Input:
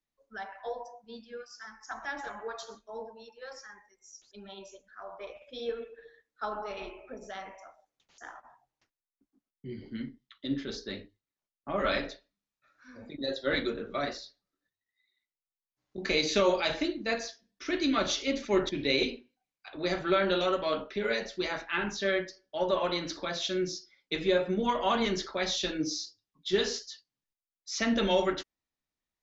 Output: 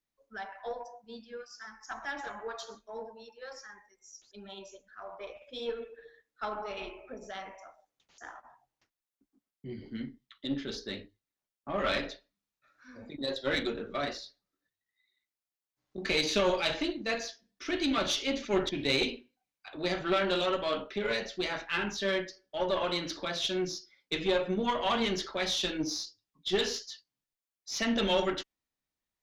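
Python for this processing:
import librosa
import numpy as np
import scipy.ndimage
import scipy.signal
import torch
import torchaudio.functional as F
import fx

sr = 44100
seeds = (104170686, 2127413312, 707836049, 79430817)

y = fx.diode_clip(x, sr, knee_db=-25.0)
y = fx.dynamic_eq(y, sr, hz=3000.0, q=2.5, threshold_db=-52.0, ratio=4.0, max_db=5)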